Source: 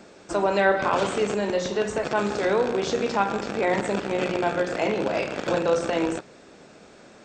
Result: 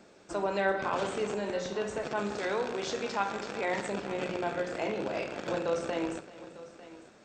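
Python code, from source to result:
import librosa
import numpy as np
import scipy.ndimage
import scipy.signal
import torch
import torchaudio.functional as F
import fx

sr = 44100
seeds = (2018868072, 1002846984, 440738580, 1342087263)

y = fx.tilt_shelf(x, sr, db=-3.5, hz=700.0, at=(2.38, 3.9))
y = fx.echo_multitap(y, sr, ms=(67, 386, 900), db=(-16.5, -18.5, -17.0))
y = y * 10.0 ** (-8.5 / 20.0)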